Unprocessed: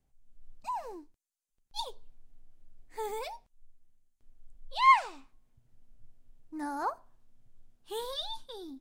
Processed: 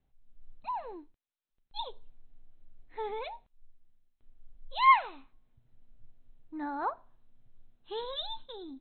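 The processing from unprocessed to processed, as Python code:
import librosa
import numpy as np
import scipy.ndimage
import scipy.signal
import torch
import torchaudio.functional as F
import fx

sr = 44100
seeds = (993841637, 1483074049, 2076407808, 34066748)

y = fx.brickwall_lowpass(x, sr, high_hz=4200.0)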